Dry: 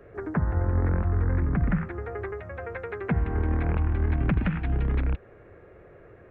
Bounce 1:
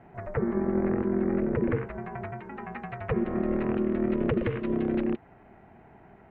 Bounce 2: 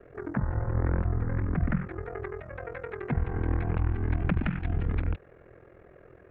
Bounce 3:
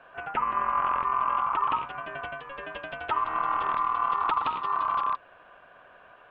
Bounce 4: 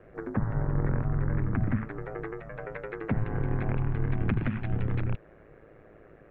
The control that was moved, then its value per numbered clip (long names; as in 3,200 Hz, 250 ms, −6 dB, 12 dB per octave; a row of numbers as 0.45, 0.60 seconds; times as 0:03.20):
ring modulation, frequency: 290, 21, 1,100, 54 Hertz